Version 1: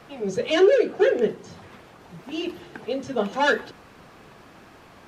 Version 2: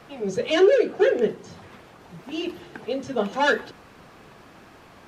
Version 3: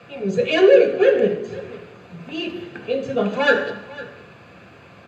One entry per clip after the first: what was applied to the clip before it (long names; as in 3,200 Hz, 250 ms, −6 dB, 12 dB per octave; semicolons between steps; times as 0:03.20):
no processing that can be heard
single-tap delay 504 ms −18.5 dB; convolution reverb RT60 0.85 s, pre-delay 3 ms, DRR 4 dB; level −6.5 dB